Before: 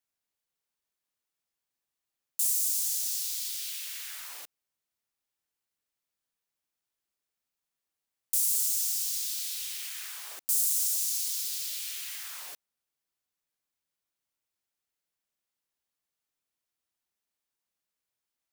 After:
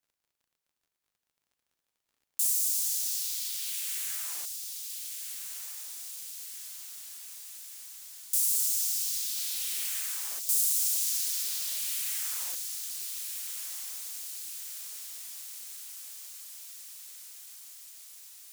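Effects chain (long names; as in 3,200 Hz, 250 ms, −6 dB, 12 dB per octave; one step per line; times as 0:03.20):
0:09.36–0:10.00: converter with a step at zero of −44.5 dBFS
surface crackle 53 per second −60 dBFS
feedback delay with all-pass diffusion 1,442 ms, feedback 66%, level −7 dB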